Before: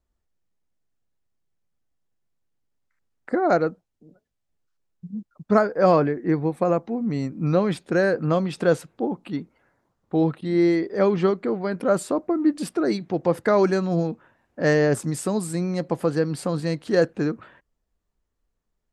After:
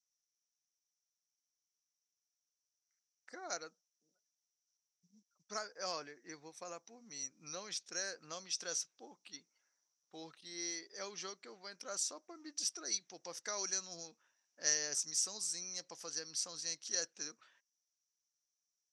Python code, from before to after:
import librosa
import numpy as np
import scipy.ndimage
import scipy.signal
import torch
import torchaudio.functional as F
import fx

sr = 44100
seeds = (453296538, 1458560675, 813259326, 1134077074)

y = fx.bandpass_q(x, sr, hz=5800.0, q=14.0)
y = y * 10.0 ** (16.0 / 20.0)